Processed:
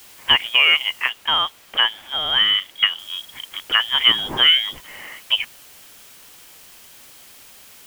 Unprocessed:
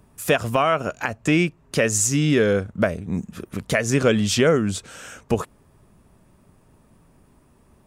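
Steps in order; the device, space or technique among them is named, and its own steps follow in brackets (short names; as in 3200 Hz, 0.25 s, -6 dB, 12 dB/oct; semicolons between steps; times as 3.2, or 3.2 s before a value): scrambled radio voice (BPF 370–2700 Hz; inverted band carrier 3500 Hz; white noise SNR 24 dB); 1.09–2.99 tone controls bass -3 dB, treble -6 dB; gain +5 dB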